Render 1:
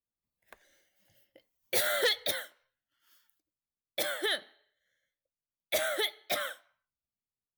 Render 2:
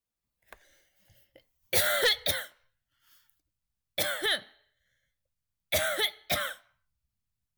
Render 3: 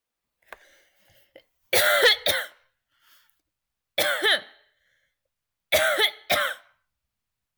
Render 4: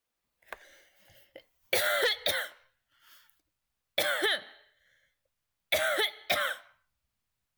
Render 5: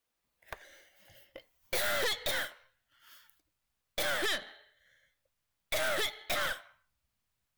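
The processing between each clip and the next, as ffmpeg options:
-af "asubboost=boost=9.5:cutoff=120,volume=3.5dB"
-af "bass=f=250:g=-11,treble=f=4k:g=-6,volume=8.5dB"
-af "acompressor=threshold=-25dB:ratio=6"
-af "aeval=exprs='(tanh(44.7*val(0)+0.65)-tanh(0.65))/44.7':c=same,volume=4dB"

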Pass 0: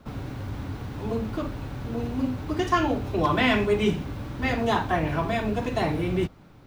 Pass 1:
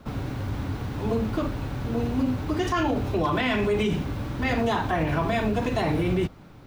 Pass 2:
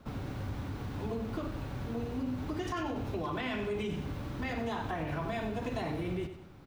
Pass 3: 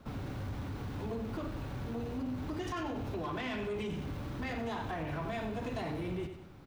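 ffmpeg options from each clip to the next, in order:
-af "alimiter=limit=-19.5dB:level=0:latency=1:release=39,volume=3.5dB"
-filter_complex "[0:a]acompressor=threshold=-25dB:ratio=6,asplit=2[a][b];[b]aecho=0:1:95|190|285|380:0.316|0.133|0.0558|0.0234[c];[a][c]amix=inputs=2:normalize=0,volume=-7dB"
-af "asoftclip=type=tanh:threshold=-30.5dB"

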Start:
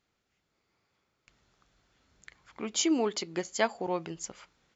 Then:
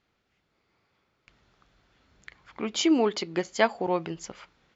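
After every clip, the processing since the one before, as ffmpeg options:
-af "lowpass=4.5k,volume=5dB"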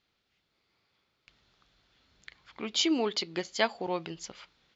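-af "equalizer=f=4k:t=o:w=1.3:g=10,volume=-6dB"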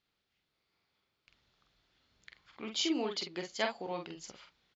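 -filter_complex "[0:a]asplit=2[a][b];[b]adelay=46,volume=-5dB[c];[a][c]amix=inputs=2:normalize=0,volume=-6.5dB"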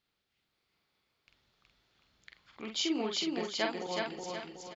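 -af "aecho=1:1:371|742|1113|1484|1855|2226:0.708|0.304|0.131|0.0563|0.0242|0.0104"

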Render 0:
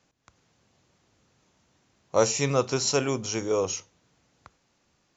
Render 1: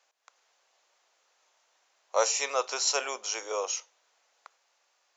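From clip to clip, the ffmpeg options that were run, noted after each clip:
-af "highpass=f=580:w=0.5412,highpass=f=580:w=1.3066"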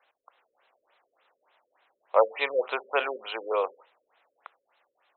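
-af "afftfilt=real='re*lt(b*sr/1024,560*pow(4200/560,0.5+0.5*sin(2*PI*3.4*pts/sr)))':imag='im*lt(b*sr/1024,560*pow(4200/560,0.5+0.5*sin(2*PI*3.4*pts/sr)))':win_size=1024:overlap=0.75,volume=5.5dB"

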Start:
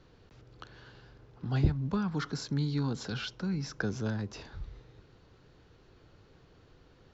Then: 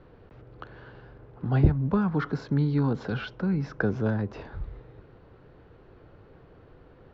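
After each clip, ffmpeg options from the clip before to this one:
-af "lowpass=2k,equalizer=f=550:w=1.2:g=3.5,volume=6dB"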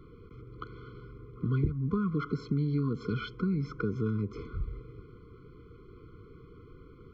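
-af "acompressor=threshold=-29dB:ratio=4,afftfilt=real='re*eq(mod(floor(b*sr/1024/500),2),0)':imag='im*eq(mod(floor(b*sr/1024/500),2),0)':win_size=1024:overlap=0.75,volume=2dB"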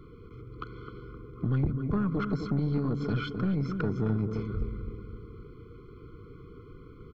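-filter_complex "[0:a]asplit=2[a][b];[b]adelay=260,lowpass=f=1.3k:p=1,volume=-7dB,asplit=2[c][d];[d]adelay=260,lowpass=f=1.3k:p=1,volume=0.51,asplit=2[e][f];[f]adelay=260,lowpass=f=1.3k:p=1,volume=0.51,asplit=2[g][h];[h]adelay=260,lowpass=f=1.3k:p=1,volume=0.51,asplit=2[i][j];[j]adelay=260,lowpass=f=1.3k:p=1,volume=0.51,asplit=2[k][l];[l]adelay=260,lowpass=f=1.3k:p=1,volume=0.51[m];[a][c][e][g][i][k][m]amix=inputs=7:normalize=0,aeval=exprs='(tanh(15.8*val(0)+0.35)-tanh(0.35))/15.8':c=same,volume=3.5dB"

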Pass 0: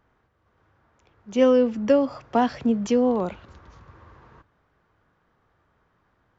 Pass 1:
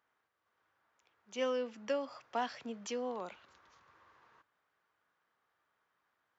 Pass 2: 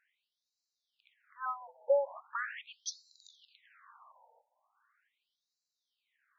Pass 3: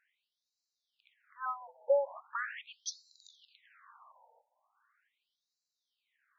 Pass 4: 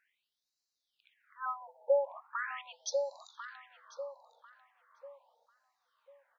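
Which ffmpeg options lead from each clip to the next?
-af "highpass=f=1.5k:p=1,volume=-6.5dB"
-af "afftfilt=real='re*between(b*sr/1024,650*pow(5500/650,0.5+0.5*sin(2*PI*0.4*pts/sr))/1.41,650*pow(5500/650,0.5+0.5*sin(2*PI*0.4*pts/sr))*1.41)':imag='im*between(b*sr/1024,650*pow(5500/650,0.5+0.5*sin(2*PI*0.4*pts/sr))/1.41,650*pow(5500/650,0.5+0.5*sin(2*PI*0.4*pts/sr))*1.41)':win_size=1024:overlap=0.75,volume=8dB"
-af anull
-filter_complex "[0:a]asplit=2[a][b];[b]adelay=1045,lowpass=f=870:p=1,volume=-3.5dB,asplit=2[c][d];[d]adelay=1045,lowpass=f=870:p=1,volume=0.4,asplit=2[e][f];[f]adelay=1045,lowpass=f=870:p=1,volume=0.4,asplit=2[g][h];[h]adelay=1045,lowpass=f=870:p=1,volume=0.4,asplit=2[i][j];[j]adelay=1045,lowpass=f=870:p=1,volume=0.4[k];[a][c][e][g][i][k]amix=inputs=6:normalize=0"

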